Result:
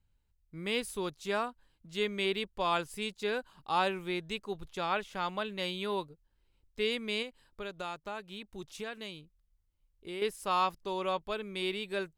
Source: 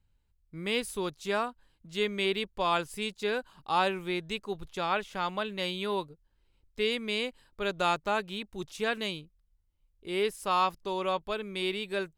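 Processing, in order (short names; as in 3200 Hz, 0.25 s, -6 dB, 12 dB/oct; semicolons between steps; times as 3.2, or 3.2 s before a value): 7.22–10.22 compressor 2.5:1, threshold -38 dBFS, peak gain reduction 10.5 dB; gain -2.5 dB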